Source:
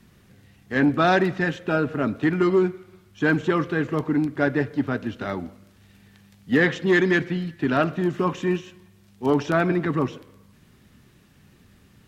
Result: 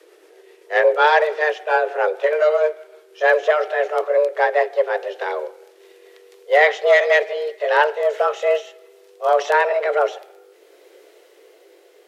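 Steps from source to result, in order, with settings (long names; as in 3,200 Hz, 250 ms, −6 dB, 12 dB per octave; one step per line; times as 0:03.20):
pitch glide at a constant tempo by −3 semitones ending unshifted
frequency shifter +300 Hz
level +5.5 dB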